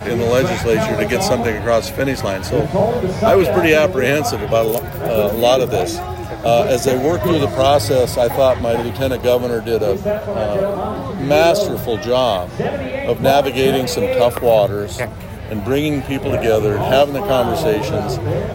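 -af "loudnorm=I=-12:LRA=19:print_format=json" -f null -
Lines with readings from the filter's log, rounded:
"input_i" : "-16.7",
"input_tp" : "-2.6",
"input_lra" : "1.6",
"input_thresh" : "-26.7",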